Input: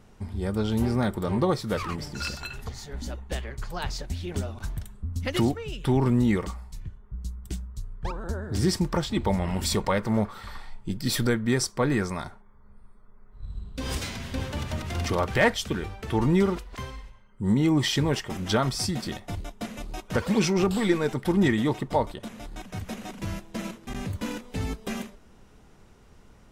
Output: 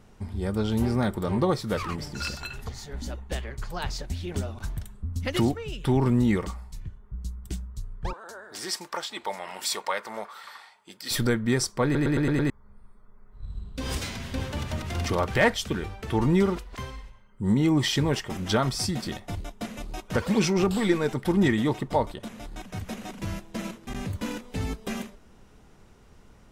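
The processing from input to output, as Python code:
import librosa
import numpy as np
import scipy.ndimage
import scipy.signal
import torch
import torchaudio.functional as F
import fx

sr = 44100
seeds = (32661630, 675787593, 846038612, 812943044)

y = fx.highpass(x, sr, hz=730.0, slope=12, at=(8.13, 11.11))
y = fx.edit(y, sr, fx.stutter_over(start_s=11.84, slice_s=0.11, count=6), tone=tone)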